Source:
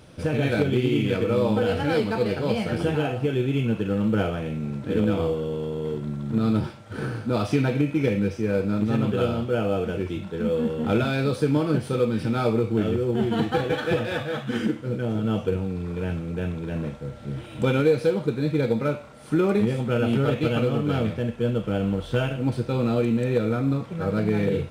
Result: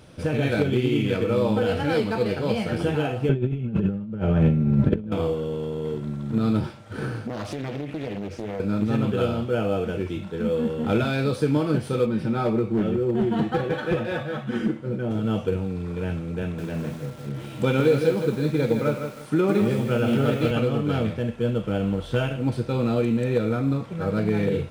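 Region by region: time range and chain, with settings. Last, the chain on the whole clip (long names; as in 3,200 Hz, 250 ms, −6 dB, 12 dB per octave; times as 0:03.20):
0:03.29–0:05.12: RIAA equalisation playback + comb filter 5.1 ms, depth 40% + compressor whose output falls as the input rises −21 dBFS, ratio −0.5
0:07.27–0:08.60: downward compressor 8 to 1, threshold −26 dBFS + highs frequency-modulated by the lows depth 0.75 ms
0:12.06–0:15.11: high-shelf EQ 2,300 Hz −8.5 dB + comb filter 5.4 ms, depth 40% + hard clipping −16 dBFS
0:16.42–0:20.51: high-pass filter 89 Hz 24 dB per octave + feedback echo at a low word length 161 ms, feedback 35%, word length 7 bits, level −6.5 dB
whole clip: no processing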